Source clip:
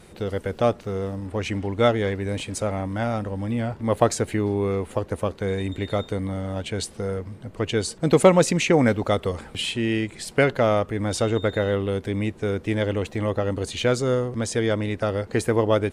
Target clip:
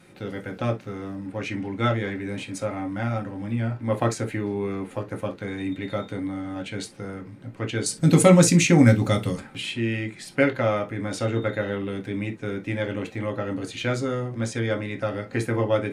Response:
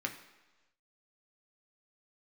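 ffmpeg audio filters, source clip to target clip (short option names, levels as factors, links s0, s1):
-filter_complex "[0:a]asettb=1/sr,asplit=3[s0][s1][s2];[s0]atrim=end=7.864[s3];[s1]atrim=start=7.86:end=9.4,asetpts=PTS-STARTPTS,afade=t=in:d=0.004:c=qsin,afade=t=out:st=1.536:d=0.004:c=qsin,bass=f=250:g=10,treble=f=4000:g=14[s4];[s2]atrim=start=9.396[s5];[s3][s4]acrossfade=d=0.004:c1=hsin:c2=qsin[s6];[s6][s5]acrossfade=d=0.004:c1=qsin:c2=hsin[s7];[1:a]atrim=start_sample=2205,atrim=end_sample=3087[s8];[s7][s8]afir=irnorm=-1:irlink=0,volume=0.596"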